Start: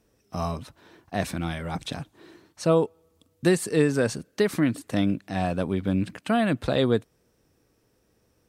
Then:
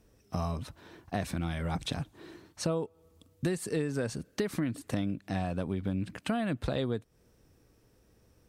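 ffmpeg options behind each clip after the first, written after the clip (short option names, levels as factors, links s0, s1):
-af "lowshelf=f=110:g=9,acompressor=threshold=0.0355:ratio=5"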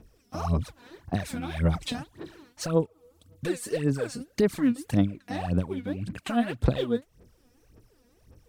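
-af "aphaser=in_gain=1:out_gain=1:delay=4.2:decay=0.79:speed=1.8:type=sinusoidal,volume=0.841"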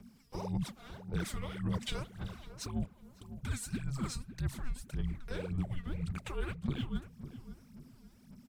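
-filter_complex "[0:a]areverse,acompressor=threshold=0.0224:ratio=5,areverse,afreqshift=-270,asplit=2[s0][s1];[s1]adelay=552,lowpass=f=1100:p=1,volume=0.266,asplit=2[s2][s3];[s3]adelay=552,lowpass=f=1100:p=1,volume=0.34,asplit=2[s4][s5];[s5]adelay=552,lowpass=f=1100:p=1,volume=0.34,asplit=2[s6][s7];[s7]adelay=552,lowpass=f=1100:p=1,volume=0.34[s8];[s0][s2][s4][s6][s8]amix=inputs=5:normalize=0"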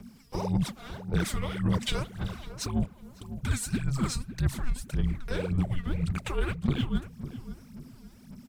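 -af "aeval=exprs='0.1*(cos(1*acos(clip(val(0)/0.1,-1,1)))-cos(1*PI/2))+0.00891*(cos(6*acos(clip(val(0)/0.1,-1,1)))-cos(6*PI/2))+0.00631*(cos(8*acos(clip(val(0)/0.1,-1,1)))-cos(8*PI/2))':c=same,volume=2.51"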